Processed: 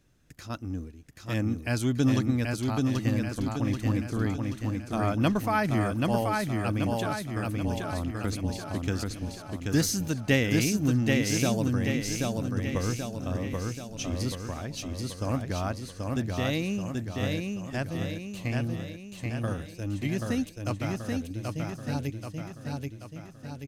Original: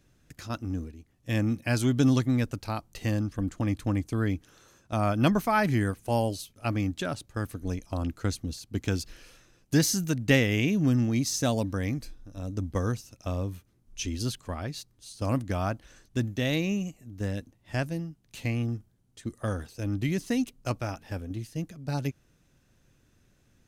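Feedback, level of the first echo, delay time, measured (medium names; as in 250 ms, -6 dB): 54%, -3.0 dB, 782 ms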